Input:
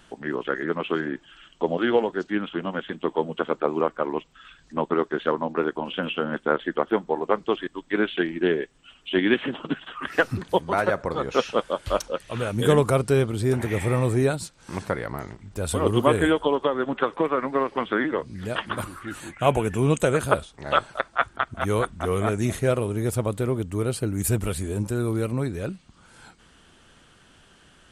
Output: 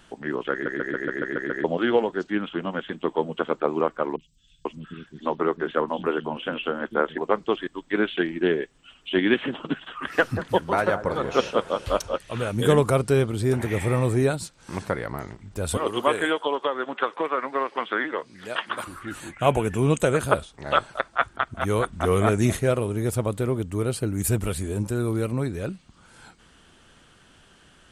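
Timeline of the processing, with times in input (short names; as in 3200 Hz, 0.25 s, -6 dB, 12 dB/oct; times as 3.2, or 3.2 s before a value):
0.52 stutter in place 0.14 s, 8 plays
4.16–7.18 three bands offset in time lows, highs, mids 30/490 ms, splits 200/4000 Hz
9.88–12.17 echo with dull and thin repeats by turns 0.184 s, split 1400 Hz, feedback 64%, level -10 dB
15.77–18.87 weighting filter A
21.93–22.57 gain +3.5 dB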